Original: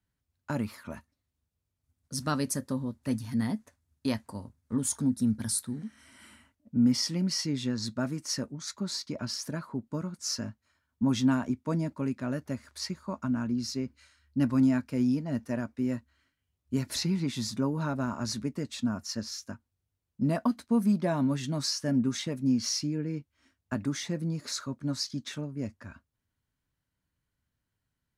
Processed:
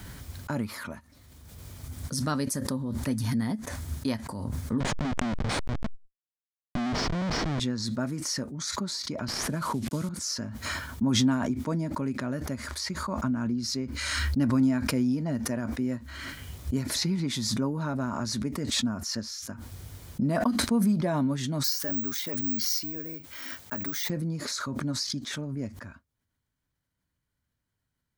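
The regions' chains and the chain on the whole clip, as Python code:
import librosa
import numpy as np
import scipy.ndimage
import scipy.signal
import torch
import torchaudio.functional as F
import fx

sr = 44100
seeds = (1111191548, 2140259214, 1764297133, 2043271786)

y = fx.chain(x, sr, fx.schmitt(flips_db=-32.0),
    fx.air_absorb(metres=130.0),
    fx.env_flatten(amount_pct=100), at=(4.8, 7.6))
y = fx.chain(y, sr, fx.cvsd(bps=64000),
    fx.low_shelf(hz=180.0, db=6.0),
    fx.band_squash(depth_pct=70), at=(9.28, 10.09))
y = fx.chain(y, sr, fx.highpass(hz=600.0, slope=6),
    fx.notch(hz=1100.0, q=24.0),
    fx.resample_bad(factor=2, down='filtered', up='zero_stuff'), at=(21.64, 24.1))
y = fx.notch(y, sr, hz=2700.0, q=13.0)
y = fx.pre_swell(y, sr, db_per_s=26.0)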